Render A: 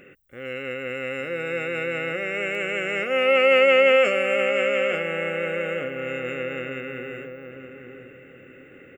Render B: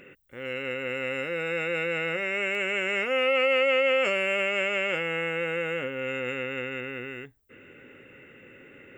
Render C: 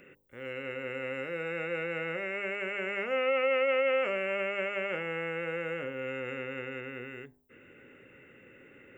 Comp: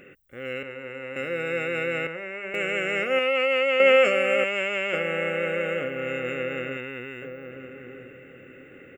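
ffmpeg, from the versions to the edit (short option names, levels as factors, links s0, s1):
-filter_complex "[2:a]asplit=2[s0][s1];[1:a]asplit=3[s2][s3][s4];[0:a]asplit=6[s5][s6][s7][s8][s9][s10];[s5]atrim=end=0.632[s11];[s0]atrim=start=0.628:end=1.162[s12];[s6]atrim=start=1.158:end=2.072[s13];[s1]atrim=start=2.068:end=2.542[s14];[s7]atrim=start=2.538:end=3.192[s15];[s2]atrim=start=3.188:end=3.802[s16];[s8]atrim=start=3.798:end=4.442[s17];[s3]atrim=start=4.438:end=4.932[s18];[s9]atrim=start=4.928:end=6.772[s19];[s4]atrim=start=6.768:end=7.222[s20];[s10]atrim=start=7.218[s21];[s11][s12]acrossfade=d=0.004:c1=hsin:c2=hsin[s22];[s22][s13]acrossfade=d=0.004:c1=hsin:c2=hsin[s23];[s23][s14]acrossfade=d=0.004:c1=hsin:c2=hsin[s24];[s24][s15]acrossfade=d=0.004:c1=hsin:c2=hsin[s25];[s25][s16]acrossfade=d=0.004:c1=hsin:c2=hsin[s26];[s26][s17]acrossfade=d=0.004:c1=hsin:c2=hsin[s27];[s27][s18]acrossfade=d=0.004:c1=hsin:c2=hsin[s28];[s28][s19]acrossfade=d=0.004:c1=hsin:c2=hsin[s29];[s29][s20]acrossfade=d=0.004:c1=hsin:c2=hsin[s30];[s30][s21]acrossfade=d=0.004:c1=hsin:c2=hsin"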